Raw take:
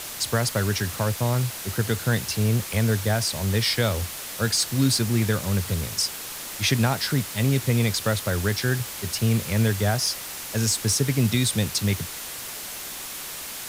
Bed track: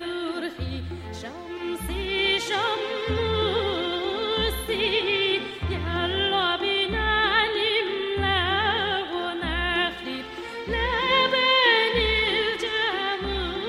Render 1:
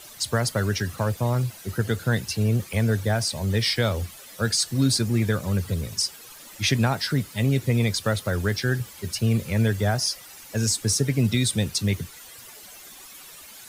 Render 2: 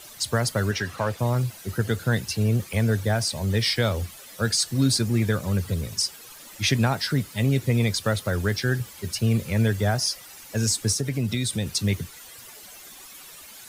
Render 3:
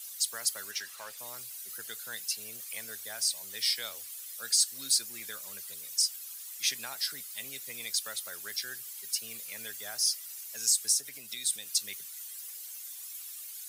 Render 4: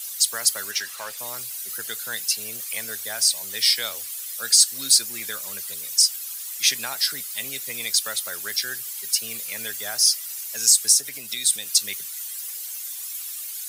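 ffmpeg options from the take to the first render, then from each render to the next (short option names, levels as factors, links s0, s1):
-af "afftdn=nr=13:nf=-35"
-filter_complex "[0:a]asettb=1/sr,asplit=3[s0][s1][s2];[s0]atrim=end=0.714[s3];[s1]atrim=start=0.71:end=1.19,asetpts=PTS-STARTPTS,afade=t=in:d=0.004:c=qsin,afade=t=out:st=0.476:d=0.004:c=qsin,asplit=2[s4][s5];[s5]highpass=f=720:p=1,volume=3.16,asoftclip=type=tanh:threshold=0.237[s6];[s4][s6]amix=inputs=2:normalize=0,lowpass=f=2700:p=1,volume=0.501[s7];[s2]atrim=start=1.186[s8];[s3][s7]acrossfade=d=0.004:c1=hsin:c2=qsin[s9];[s9][s8]acrossfade=d=0.004:c1=qsin:c2=hsin,asettb=1/sr,asplit=3[s10][s11][s12];[s10]atrim=end=10.924[s13];[s11]atrim=start=10.92:end=11.68,asetpts=PTS-STARTPTS,afade=t=in:d=0.004:c=qsin,afade=t=out:st=0.756:d=0.004:c=qsin,acompressor=threshold=0.0631:ratio=2:attack=3.2:release=140:knee=1:detection=peak[s14];[s12]atrim=start=11.676[s15];[s13][s14]acrossfade=d=0.004:c1=hsin:c2=qsin[s16];[s16][s15]acrossfade=d=0.004:c1=qsin:c2=hsin"
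-af "highpass=f=220:p=1,aderivative"
-af "volume=3.16"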